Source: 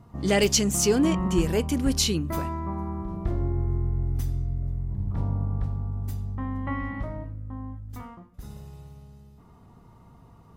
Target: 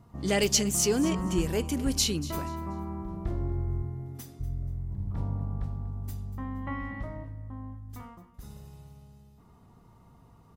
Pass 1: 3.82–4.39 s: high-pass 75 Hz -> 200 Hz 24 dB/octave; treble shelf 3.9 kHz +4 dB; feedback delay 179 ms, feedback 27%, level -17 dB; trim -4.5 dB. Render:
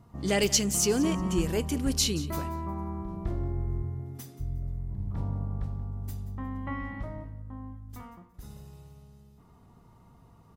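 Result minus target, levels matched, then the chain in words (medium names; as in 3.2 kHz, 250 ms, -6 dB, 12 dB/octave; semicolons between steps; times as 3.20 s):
echo 61 ms early
3.82–4.39 s: high-pass 75 Hz -> 200 Hz 24 dB/octave; treble shelf 3.9 kHz +4 dB; feedback delay 240 ms, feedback 27%, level -17 dB; trim -4.5 dB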